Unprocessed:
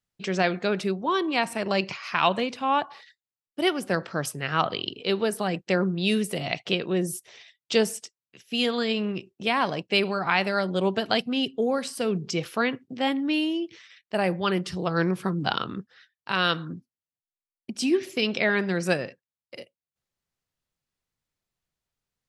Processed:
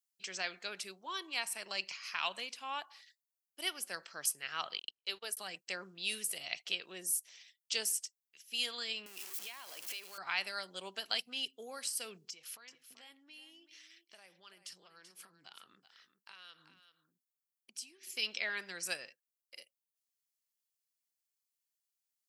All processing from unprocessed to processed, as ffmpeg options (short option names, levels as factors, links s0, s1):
-filter_complex "[0:a]asettb=1/sr,asplit=3[s0][s1][s2];[s0]atrim=end=4.794[s3];[s1]atrim=start=4.79:end=5.37,asetpts=PTS-STARTPTS,afade=t=in:d=0.004:c=qsin,afade=t=out:st=0.576:d=0.004:c=qsin,bass=f=250:g=-9,treble=f=4000:g=0,aeval=exprs='val(0)+0.00631*(sin(2*PI*50*n/s)+sin(2*PI*2*50*n/s)/2+sin(2*PI*3*50*n/s)/3+sin(2*PI*4*50*n/s)/4+sin(2*PI*5*50*n/s)/5)':c=same,agate=range=0.00562:threshold=0.0251:ratio=16:release=100:detection=peak[s4];[s2]atrim=start=5.366[s5];[s3][s4]acrossfade=d=0.004:c1=hsin:c2=qsin[s6];[s6][s5]acrossfade=d=0.004:c1=qsin:c2=hsin,asettb=1/sr,asplit=3[s7][s8][s9];[s7]atrim=end=9.064[s10];[s8]atrim=start=9.06:end=10.18,asetpts=PTS-STARTPTS,afade=t=in:d=0.004:c=qsin,afade=t=out:st=1.116:d=0.004:c=qsin,aeval=exprs='val(0)+0.5*0.0316*sgn(val(0))':c=same,highpass=270,acompressor=threshold=0.0316:ratio=10:attack=3.2:release=140:knee=1:detection=peak[s11];[s9]atrim=start=10.176[s12];[s10][s11]acrossfade=d=0.004:c1=hsin:c2=qsin[s13];[s13][s12]acrossfade=d=0.004:c1=qsin:c2=hsin,asettb=1/sr,asplit=3[s14][s15][s16];[s14]atrim=end=12.294[s17];[s15]atrim=start=12.29:end=18.12,asetpts=PTS-STARTPTS,afade=t=in:d=0.004:c=qsin,afade=t=out:st=5.826:d=0.004:c=qsin,acompressor=threshold=0.0141:ratio=10:attack=3.2:release=140:knee=1:detection=peak,aecho=1:1:384:0.266,atrim=end_sample=257103[s18];[s16]atrim=start=18.116[s19];[s17][s18]acrossfade=d=0.004:c1=hsin:c2=qsin[s20];[s20][s19]acrossfade=d=0.004:c1=qsin:c2=hsin,aderivative,bandreject=f=3700:w=16"